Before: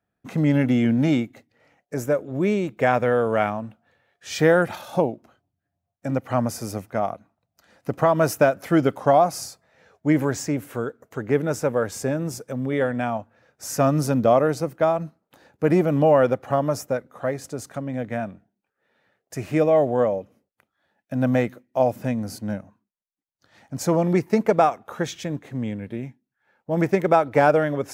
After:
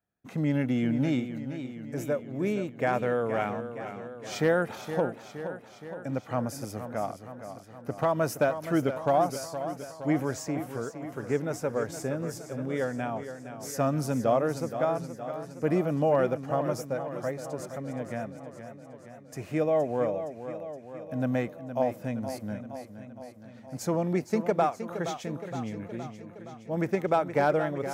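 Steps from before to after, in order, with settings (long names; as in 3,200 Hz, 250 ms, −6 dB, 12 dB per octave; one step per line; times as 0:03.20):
hard clipping −7 dBFS, distortion −35 dB
feedback echo with a swinging delay time 468 ms, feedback 63%, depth 67 cents, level −10.5 dB
level −7.5 dB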